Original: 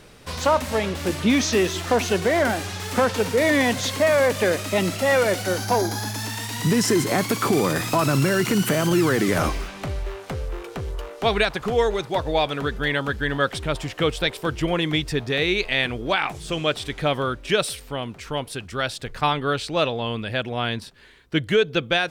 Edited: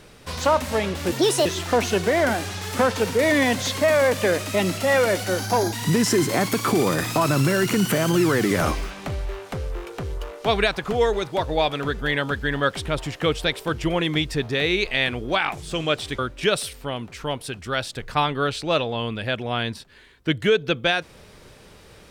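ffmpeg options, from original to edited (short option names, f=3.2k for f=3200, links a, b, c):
-filter_complex "[0:a]asplit=5[a][b][c][d][e];[a]atrim=end=1.124[f];[b]atrim=start=1.12:end=1.64,asetpts=PTS-STARTPTS,asetrate=68355,aresample=44100[g];[c]atrim=start=1.636:end=5.912[h];[d]atrim=start=6.498:end=16.962[i];[e]atrim=start=17.248[j];[f][g]acrossfade=d=0.004:c1=hsin:c2=hsin[k];[k][h]acrossfade=d=0.004:c1=hsin:c2=hsin[l];[l][i]acrossfade=d=0.004:c1=hsin:c2=hsin[m];[m][j]acrossfade=d=0.004:c1=hsin:c2=hsin"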